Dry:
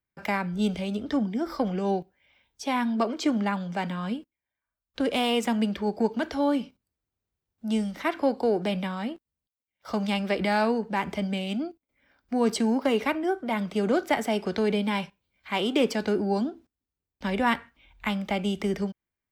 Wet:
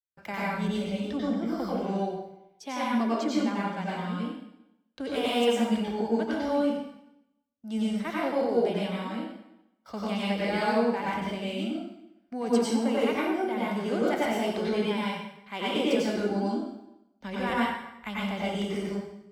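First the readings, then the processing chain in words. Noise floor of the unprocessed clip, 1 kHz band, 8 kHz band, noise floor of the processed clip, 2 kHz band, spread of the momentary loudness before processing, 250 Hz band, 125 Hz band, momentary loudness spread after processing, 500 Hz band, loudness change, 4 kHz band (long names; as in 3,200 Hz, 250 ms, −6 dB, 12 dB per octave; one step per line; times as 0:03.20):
below −85 dBFS, −1.5 dB, −1.5 dB, −69 dBFS, −2.0 dB, 8 LU, −1.5 dB, −2.0 dB, 12 LU, −0.5 dB, −1.5 dB, −1.5 dB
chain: noise gate −51 dBFS, range −16 dB
dense smooth reverb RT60 0.86 s, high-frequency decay 0.9×, pre-delay 80 ms, DRR −6.5 dB
level −9 dB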